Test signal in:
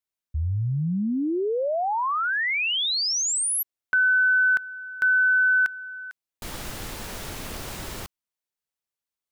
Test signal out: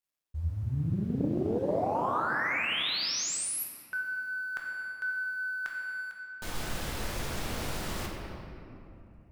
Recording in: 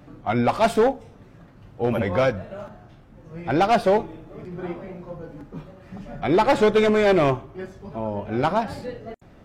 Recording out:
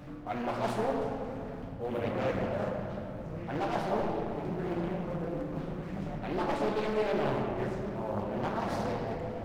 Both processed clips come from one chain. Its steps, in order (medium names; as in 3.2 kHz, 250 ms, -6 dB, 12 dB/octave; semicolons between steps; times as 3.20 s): companding laws mixed up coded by mu; reverse; compression 6:1, threshold -28 dBFS; reverse; simulated room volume 120 m³, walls hard, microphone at 0.48 m; loudspeaker Doppler distortion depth 0.67 ms; trim -5 dB